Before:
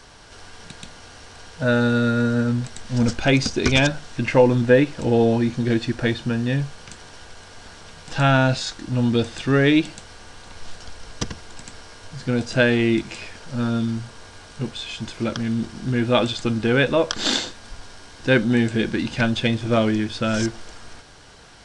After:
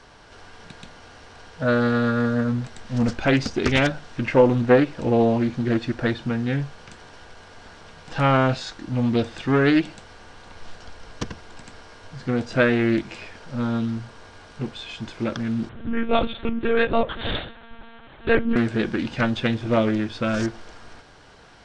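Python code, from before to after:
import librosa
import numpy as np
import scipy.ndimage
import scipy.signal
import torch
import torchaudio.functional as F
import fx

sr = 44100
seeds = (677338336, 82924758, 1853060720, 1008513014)

y = fx.lowpass(x, sr, hz=2500.0, slope=6)
y = fx.low_shelf(y, sr, hz=180.0, db=-4.0)
y = fx.lpc_monotone(y, sr, seeds[0], pitch_hz=230.0, order=10, at=(15.69, 18.56))
y = fx.doppler_dist(y, sr, depth_ms=0.3)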